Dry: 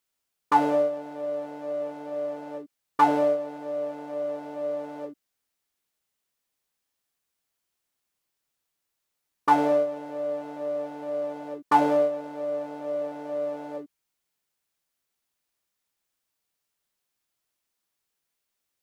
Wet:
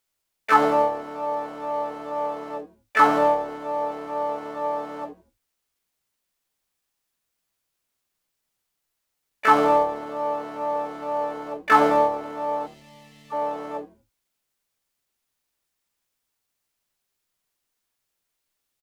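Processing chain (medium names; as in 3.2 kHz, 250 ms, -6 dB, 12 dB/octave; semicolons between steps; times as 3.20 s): time-frequency box 12.67–13.33 s, 220–1700 Hz -26 dB; harmony voices +7 st 0 dB, +12 st -10 dB; bass shelf 65 Hz +6.5 dB; on a send: frequency-shifting echo 81 ms, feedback 35%, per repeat -110 Hz, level -19 dB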